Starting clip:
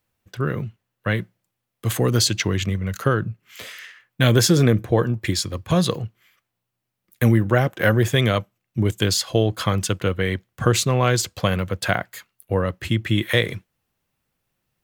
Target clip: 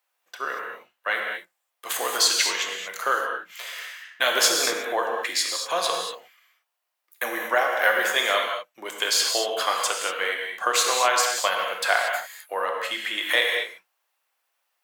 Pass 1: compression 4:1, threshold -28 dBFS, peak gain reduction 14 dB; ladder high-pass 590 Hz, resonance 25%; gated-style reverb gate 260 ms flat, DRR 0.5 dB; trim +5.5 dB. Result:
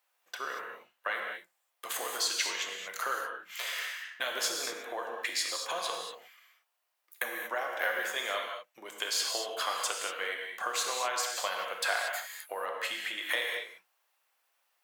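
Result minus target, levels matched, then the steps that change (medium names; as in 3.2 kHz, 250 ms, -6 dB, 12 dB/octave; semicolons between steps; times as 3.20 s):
compression: peak gain reduction +14 dB
remove: compression 4:1, threshold -28 dBFS, peak gain reduction 14 dB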